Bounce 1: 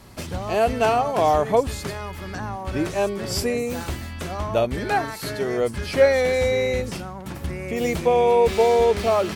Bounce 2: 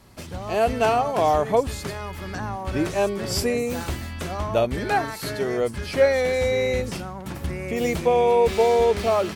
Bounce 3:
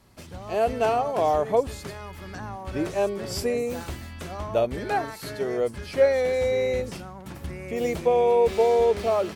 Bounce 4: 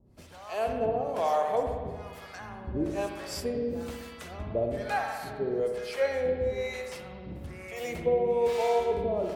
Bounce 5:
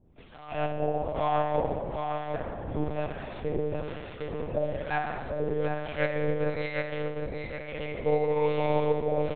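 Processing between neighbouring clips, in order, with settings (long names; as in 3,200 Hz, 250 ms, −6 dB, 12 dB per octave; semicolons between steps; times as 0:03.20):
automatic gain control gain up to 6 dB; level −5.5 dB
dynamic equaliser 510 Hz, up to +5 dB, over −31 dBFS, Q 1; level −6 dB
two-band tremolo in antiphase 1.1 Hz, depth 100%, crossover 600 Hz; spring reverb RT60 1.6 s, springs 59 ms, chirp 45 ms, DRR 3.5 dB; level −1.5 dB
on a send: repeating echo 758 ms, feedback 39%, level −5.5 dB; on the sum: one-pitch LPC vocoder at 8 kHz 150 Hz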